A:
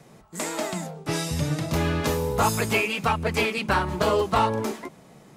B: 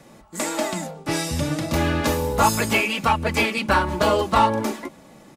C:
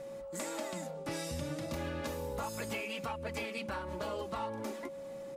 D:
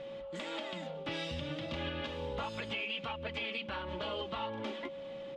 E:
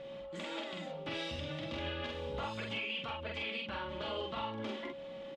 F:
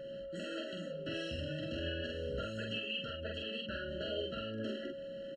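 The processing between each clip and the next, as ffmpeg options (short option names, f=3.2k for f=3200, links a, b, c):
-af "aecho=1:1:3.5:0.43,volume=3dB"
-af "alimiter=limit=-15dB:level=0:latency=1:release=472,acompressor=threshold=-36dB:ratio=2,aeval=exprs='val(0)+0.0158*sin(2*PI*550*n/s)':c=same,volume=-6dB"
-af "lowpass=f=3.2k:t=q:w=4.5,alimiter=level_in=4dB:limit=-24dB:level=0:latency=1:release=170,volume=-4dB"
-filter_complex "[0:a]asplit=2[a][b];[b]adelay=46,volume=-2.5dB[c];[a][c]amix=inputs=2:normalize=0,volume=-2.5dB"
-af "afftfilt=real='re*eq(mod(floor(b*sr/1024/650),2),0)':imag='im*eq(mod(floor(b*sr/1024/650),2),0)':win_size=1024:overlap=0.75,volume=1.5dB"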